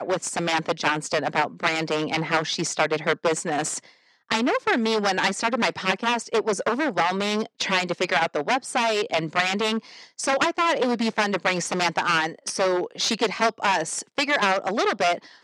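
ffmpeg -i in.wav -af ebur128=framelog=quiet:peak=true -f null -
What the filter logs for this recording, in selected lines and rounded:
Integrated loudness:
  I:         -23.6 LUFS
  Threshold: -33.7 LUFS
Loudness range:
  LRA:         1.2 LU
  Threshold: -43.7 LUFS
  LRA low:   -24.3 LUFS
  LRA high:  -23.1 LUFS
True peak:
  Peak:       -7.5 dBFS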